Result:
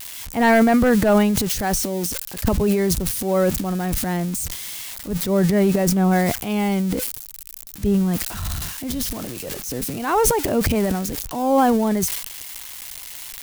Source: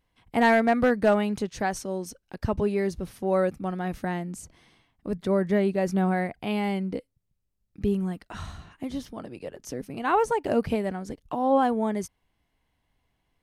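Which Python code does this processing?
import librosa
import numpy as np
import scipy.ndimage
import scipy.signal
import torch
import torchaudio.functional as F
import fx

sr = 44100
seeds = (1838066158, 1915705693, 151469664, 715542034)

y = x + 0.5 * 10.0 ** (-27.0 / 20.0) * np.diff(np.sign(x), prepend=np.sign(x[:1]))
y = fx.low_shelf(y, sr, hz=110.0, db=10.5)
y = fx.transient(y, sr, attack_db=-6, sustain_db=10)
y = y * 10.0 ** (4.5 / 20.0)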